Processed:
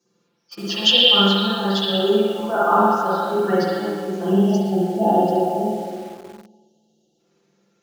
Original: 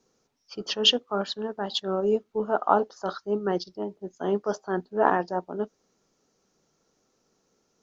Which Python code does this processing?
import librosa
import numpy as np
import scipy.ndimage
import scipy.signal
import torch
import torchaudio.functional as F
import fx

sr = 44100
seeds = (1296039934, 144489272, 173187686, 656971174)

p1 = fx.spec_quant(x, sr, step_db=15)
p2 = fx.chorus_voices(p1, sr, voices=2, hz=0.34, base_ms=16, depth_ms=4.2, mix_pct=30)
p3 = p2 + 1.0 * np.pad(p2, (int(5.8 * sr / 1000.0), 0))[:len(p2)]
p4 = p3 + fx.echo_stepped(p3, sr, ms=115, hz=2900.0, octaves=-0.7, feedback_pct=70, wet_db=-2.5, dry=0)
p5 = fx.spec_box(p4, sr, start_s=4.26, length_s=2.93, low_hz=870.0, high_hz=2700.0, gain_db=-26)
p6 = fx.high_shelf(p5, sr, hz=3800.0, db=5.5)
p7 = fx.rev_spring(p6, sr, rt60_s=1.4, pass_ms=(46, 51), chirp_ms=25, drr_db=-7.5)
p8 = fx.quant_dither(p7, sr, seeds[0], bits=6, dither='none')
p9 = p7 + (p8 * 10.0 ** (-4.0 / 20.0))
p10 = scipy.signal.sosfilt(scipy.signal.butter(2, 66.0, 'highpass', fs=sr, output='sos'), p9)
y = p10 * 10.0 ** (-4.0 / 20.0)